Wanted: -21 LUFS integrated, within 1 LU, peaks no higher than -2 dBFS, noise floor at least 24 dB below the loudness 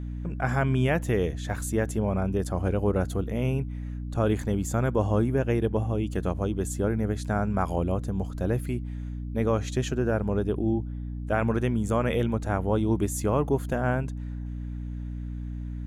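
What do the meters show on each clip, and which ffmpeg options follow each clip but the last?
hum 60 Hz; highest harmonic 300 Hz; hum level -31 dBFS; loudness -28.0 LUFS; peak level -12.0 dBFS; loudness target -21.0 LUFS
-> -af "bandreject=f=60:t=h:w=6,bandreject=f=120:t=h:w=6,bandreject=f=180:t=h:w=6,bandreject=f=240:t=h:w=6,bandreject=f=300:t=h:w=6"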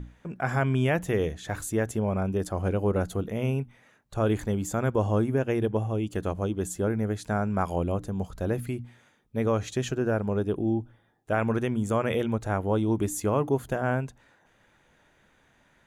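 hum not found; loudness -28.0 LUFS; peak level -13.0 dBFS; loudness target -21.0 LUFS
-> -af "volume=2.24"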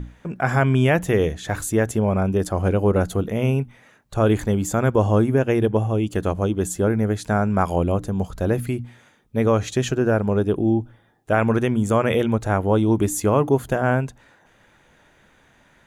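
loudness -21.0 LUFS; peak level -6.0 dBFS; noise floor -57 dBFS

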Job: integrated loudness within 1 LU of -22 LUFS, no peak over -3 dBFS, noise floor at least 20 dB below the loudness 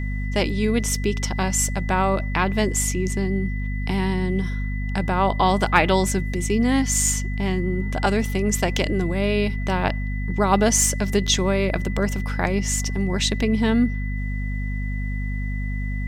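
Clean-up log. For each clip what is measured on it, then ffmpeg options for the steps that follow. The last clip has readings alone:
hum 50 Hz; highest harmonic 250 Hz; hum level -23 dBFS; steady tone 2 kHz; tone level -36 dBFS; loudness -22.5 LUFS; peak level -1.5 dBFS; loudness target -22.0 LUFS
-> -af "bandreject=f=50:t=h:w=6,bandreject=f=100:t=h:w=6,bandreject=f=150:t=h:w=6,bandreject=f=200:t=h:w=6,bandreject=f=250:t=h:w=6"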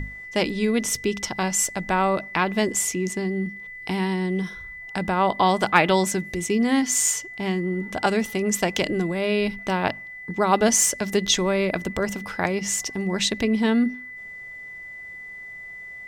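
hum not found; steady tone 2 kHz; tone level -36 dBFS
-> -af "bandreject=f=2000:w=30"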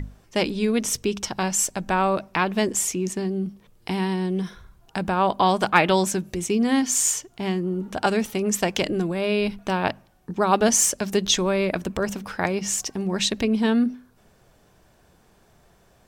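steady tone not found; loudness -23.0 LUFS; peak level -3.0 dBFS; loudness target -22.0 LUFS
-> -af "volume=1.12,alimiter=limit=0.708:level=0:latency=1"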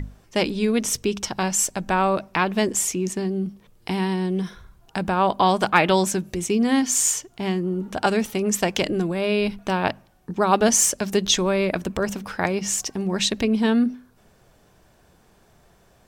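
loudness -22.5 LUFS; peak level -3.0 dBFS; noise floor -57 dBFS

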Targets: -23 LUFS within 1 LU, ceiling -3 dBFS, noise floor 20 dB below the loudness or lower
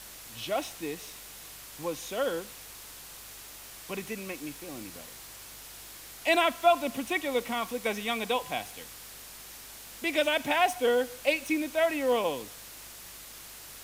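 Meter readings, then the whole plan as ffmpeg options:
hum 50 Hz; highest harmonic 150 Hz; hum level -59 dBFS; noise floor -47 dBFS; noise floor target -50 dBFS; loudness -29.5 LUFS; peak level -10.5 dBFS; loudness target -23.0 LUFS
-> -af "bandreject=f=50:t=h:w=4,bandreject=f=100:t=h:w=4,bandreject=f=150:t=h:w=4"
-af "afftdn=nr=6:nf=-47"
-af "volume=2.11"

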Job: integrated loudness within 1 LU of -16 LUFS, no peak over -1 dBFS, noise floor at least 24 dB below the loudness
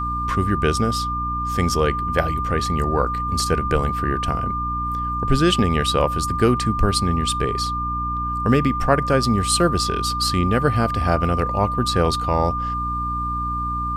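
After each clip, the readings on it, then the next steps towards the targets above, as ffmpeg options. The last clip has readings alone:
hum 60 Hz; highest harmonic 300 Hz; hum level -26 dBFS; steady tone 1.2 kHz; tone level -23 dBFS; loudness -21.0 LUFS; peak level -3.0 dBFS; loudness target -16.0 LUFS
-> -af "bandreject=f=60:t=h:w=4,bandreject=f=120:t=h:w=4,bandreject=f=180:t=h:w=4,bandreject=f=240:t=h:w=4,bandreject=f=300:t=h:w=4"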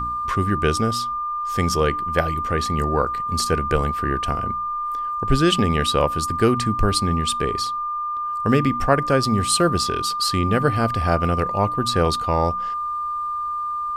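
hum not found; steady tone 1.2 kHz; tone level -23 dBFS
-> -af "bandreject=f=1200:w=30"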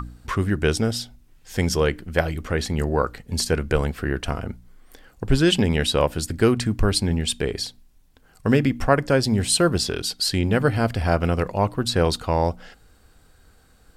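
steady tone not found; loudness -22.5 LUFS; peak level -3.5 dBFS; loudness target -16.0 LUFS
-> -af "volume=2.11,alimiter=limit=0.891:level=0:latency=1"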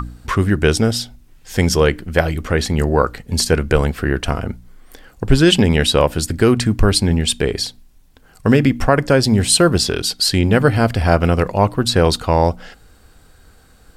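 loudness -16.5 LUFS; peak level -1.0 dBFS; noise floor -49 dBFS

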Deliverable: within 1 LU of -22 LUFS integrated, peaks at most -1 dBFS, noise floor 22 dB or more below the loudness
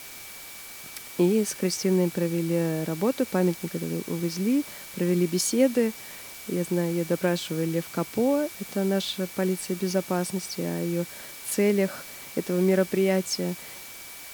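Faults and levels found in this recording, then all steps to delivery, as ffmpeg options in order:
steady tone 2.3 kHz; tone level -48 dBFS; noise floor -42 dBFS; noise floor target -49 dBFS; loudness -26.5 LUFS; peak level -9.5 dBFS; loudness target -22.0 LUFS
-> -af "bandreject=f=2300:w=30"
-af "afftdn=nr=7:nf=-42"
-af "volume=1.68"

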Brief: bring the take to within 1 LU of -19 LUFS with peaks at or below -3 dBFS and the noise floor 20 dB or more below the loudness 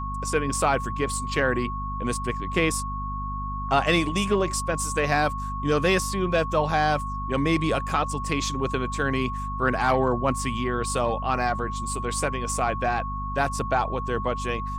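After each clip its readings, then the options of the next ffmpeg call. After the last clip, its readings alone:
hum 50 Hz; highest harmonic 250 Hz; hum level -30 dBFS; steady tone 1.1 kHz; tone level -31 dBFS; loudness -25.5 LUFS; peak level -7.5 dBFS; loudness target -19.0 LUFS
-> -af "bandreject=f=50:t=h:w=6,bandreject=f=100:t=h:w=6,bandreject=f=150:t=h:w=6,bandreject=f=200:t=h:w=6,bandreject=f=250:t=h:w=6"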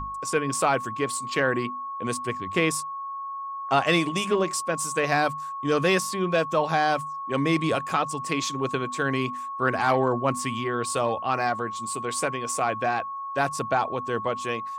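hum not found; steady tone 1.1 kHz; tone level -31 dBFS
-> -af "bandreject=f=1100:w=30"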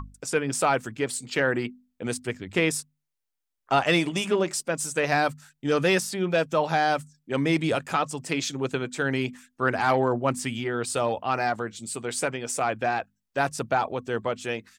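steady tone not found; loudness -26.5 LUFS; peak level -8.0 dBFS; loudness target -19.0 LUFS
-> -af "volume=2.37,alimiter=limit=0.708:level=0:latency=1"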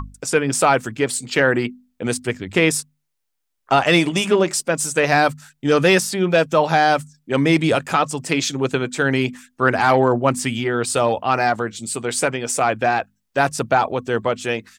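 loudness -19.0 LUFS; peak level -3.0 dBFS; noise floor -74 dBFS

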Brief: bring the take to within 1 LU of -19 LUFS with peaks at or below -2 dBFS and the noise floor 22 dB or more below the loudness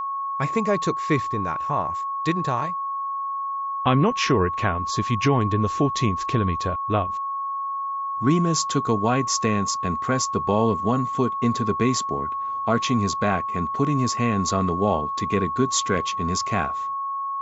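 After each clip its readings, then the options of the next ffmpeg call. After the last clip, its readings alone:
steady tone 1.1 kHz; tone level -25 dBFS; loudness -23.5 LUFS; peak level -7.0 dBFS; loudness target -19.0 LUFS
-> -af "bandreject=f=1100:w=30"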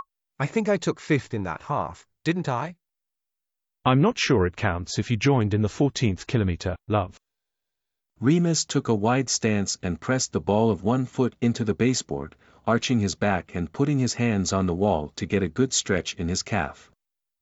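steady tone not found; loudness -24.5 LUFS; peak level -8.0 dBFS; loudness target -19.0 LUFS
-> -af "volume=1.88"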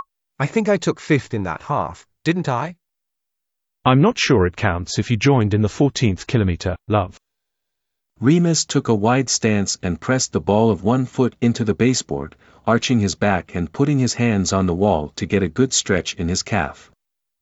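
loudness -19.0 LUFS; peak level -2.5 dBFS; noise floor -79 dBFS

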